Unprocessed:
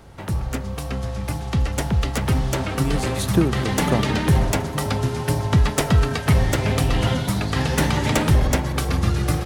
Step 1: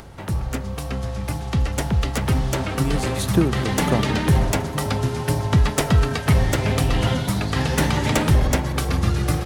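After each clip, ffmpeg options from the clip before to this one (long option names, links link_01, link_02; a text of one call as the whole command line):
ffmpeg -i in.wav -af "acompressor=mode=upward:threshold=-36dB:ratio=2.5" out.wav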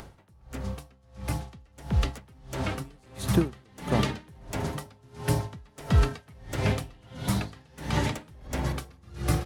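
ffmpeg -i in.wav -af "aeval=exprs='val(0)*pow(10,-32*(0.5-0.5*cos(2*PI*1.5*n/s))/20)':channel_layout=same,volume=-3dB" out.wav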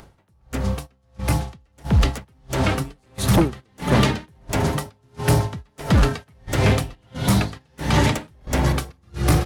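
ffmpeg -i in.wav -af "aeval=exprs='0.335*sin(PI/2*2.51*val(0)/0.335)':channel_layout=same,agate=range=-13dB:threshold=-31dB:ratio=16:detection=peak,volume=-1dB" out.wav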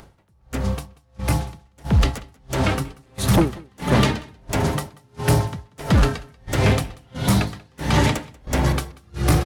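ffmpeg -i in.wav -af "aecho=1:1:187:0.0668" out.wav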